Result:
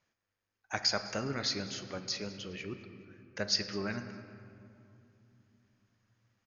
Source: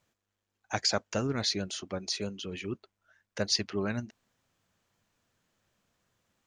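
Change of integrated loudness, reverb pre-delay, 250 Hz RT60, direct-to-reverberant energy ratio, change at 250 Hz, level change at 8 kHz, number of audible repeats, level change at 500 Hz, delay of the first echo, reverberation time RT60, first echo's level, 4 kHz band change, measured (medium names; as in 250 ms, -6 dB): -2.5 dB, 5 ms, 3.9 s, 7.5 dB, -4.5 dB, -4.0 dB, 1, -4.5 dB, 204 ms, 2.7 s, -18.5 dB, -1.5 dB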